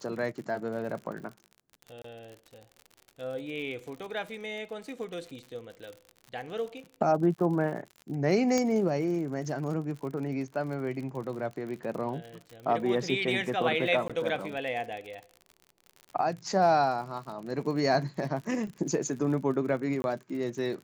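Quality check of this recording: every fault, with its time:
crackle 58/s -38 dBFS
2.02–2.04 gap 24 ms
8.58 pop -15 dBFS
14.08–14.1 gap 16 ms
20.02–20.04 gap 21 ms

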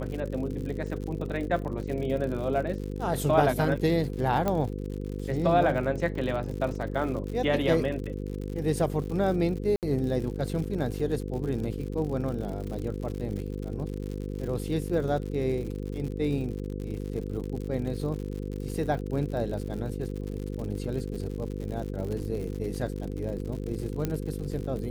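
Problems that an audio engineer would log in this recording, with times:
buzz 50 Hz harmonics 10 -34 dBFS
crackle 90/s -35 dBFS
4.48 pop -14 dBFS
9.76–9.83 gap 68 ms
24.05 pop -15 dBFS

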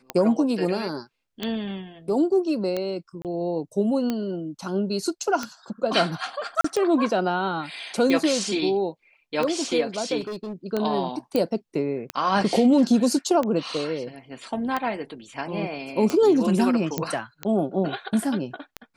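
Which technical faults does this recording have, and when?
tick 45 rpm -13 dBFS
3.22–3.25 gap 28 ms
6.61–6.64 gap 34 ms
10.2–10.53 clipped -29 dBFS
11.36 pop -11 dBFS
16.98 pop -10 dBFS

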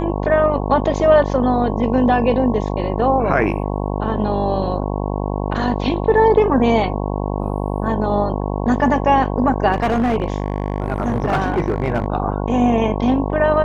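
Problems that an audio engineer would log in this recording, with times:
buzz 50 Hz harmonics 22 -22 dBFS
9.72–12.06 clipped -13 dBFS

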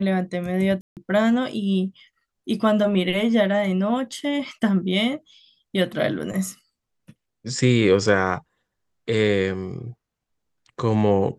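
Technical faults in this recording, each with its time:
0.81–0.97 gap 0.158 s

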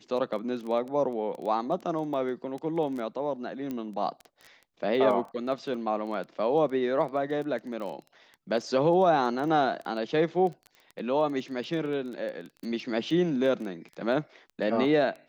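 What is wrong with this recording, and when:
crackle 10/s -34 dBFS
3.71 pop -22 dBFS

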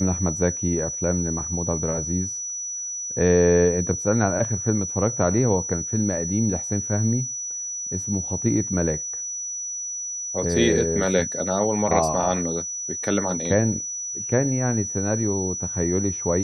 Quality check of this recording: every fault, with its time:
tone 5900 Hz -28 dBFS

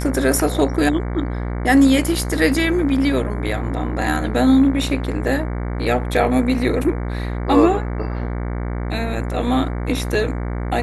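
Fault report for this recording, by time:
buzz 60 Hz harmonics 38 -24 dBFS

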